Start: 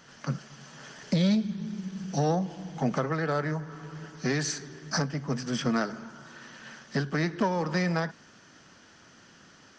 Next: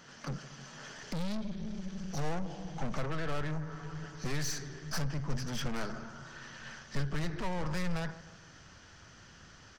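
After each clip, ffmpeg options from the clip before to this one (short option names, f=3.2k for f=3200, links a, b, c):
-filter_complex "[0:a]asplit=2[a][b];[b]adelay=155,lowpass=f=2k:p=1,volume=-22dB,asplit=2[c][d];[d]adelay=155,lowpass=f=2k:p=1,volume=0.46,asplit=2[e][f];[f]adelay=155,lowpass=f=2k:p=1,volume=0.46[g];[a][c][e][g]amix=inputs=4:normalize=0,aeval=exprs='(tanh(44.7*val(0)+0.25)-tanh(0.25))/44.7':c=same,asubboost=boost=7:cutoff=88"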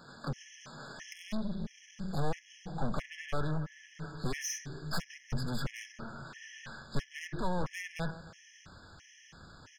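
-af "afftfilt=real='re*gt(sin(2*PI*1.5*pts/sr)*(1-2*mod(floor(b*sr/1024/1700),2)),0)':imag='im*gt(sin(2*PI*1.5*pts/sr)*(1-2*mod(floor(b*sr/1024/1700),2)),0)':win_size=1024:overlap=0.75,volume=2.5dB"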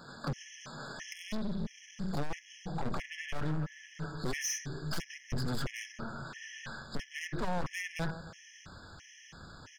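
-af "asoftclip=type=hard:threshold=-32dB,volume=3dB"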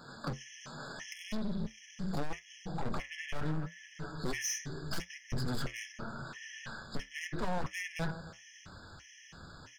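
-af "flanger=delay=7.9:depth=5.1:regen=-66:speed=0.78:shape=triangular,volume=3.5dB"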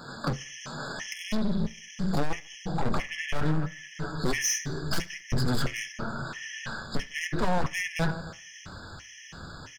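-af "aecho=1:1:73|146|219:0.0631|0.0278|0.0122,volume=8.5dB"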